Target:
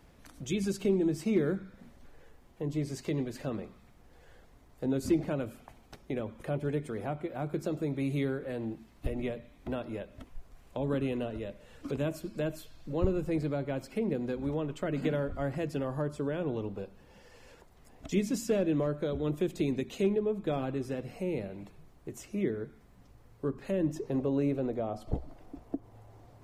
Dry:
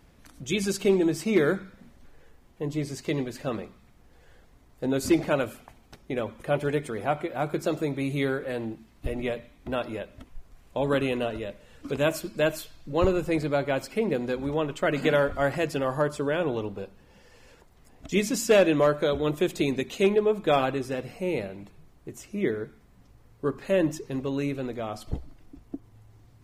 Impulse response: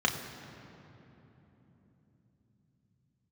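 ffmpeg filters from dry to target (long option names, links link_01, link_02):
-filter_complex "[0:a]asetnsamples=nb_out_samples=441:pad=0,asendcmd='23.96 equalizer g 13',equalizer=frequency=640:width_type=o:width=1.7:gain=2.5,acrossover=split=330[link_01][link_02];[link_02]acompressor=threshold=-40dB:ratio=2.5[link_03];[link_01][link_03]amix=inputs=2:normalize=0,volume=-2dB"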